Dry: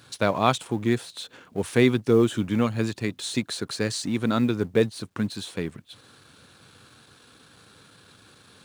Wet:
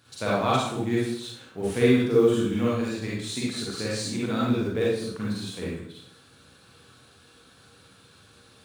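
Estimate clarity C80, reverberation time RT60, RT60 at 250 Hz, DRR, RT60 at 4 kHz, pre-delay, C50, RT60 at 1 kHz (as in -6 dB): 3.5 dB, 0.65 s, 0.80 s, -7.0 dB, 0.60 s, 37 ms, -3.0 dB, 0.60 s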